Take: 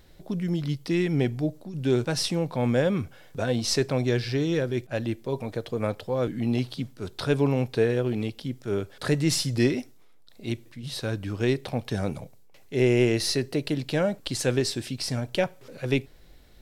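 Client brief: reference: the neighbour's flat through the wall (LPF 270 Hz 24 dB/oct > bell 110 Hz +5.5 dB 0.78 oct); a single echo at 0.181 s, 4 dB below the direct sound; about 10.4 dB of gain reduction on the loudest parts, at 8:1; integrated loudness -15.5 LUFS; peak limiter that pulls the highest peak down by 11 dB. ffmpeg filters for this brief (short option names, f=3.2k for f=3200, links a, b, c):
-af "acompressor=threshold=-28dB:ratio=8,alimiter=level_in=1dB:limit=-24dB:level=0:latency=1,volume=-1dB,lowpass=f=270:w=0.5412,lowpass=f=270:w=1.3066,equalizer=f=110:t=o:w=0.78:g=5.5,aecho=1:1:181:0.631,volume=20dB"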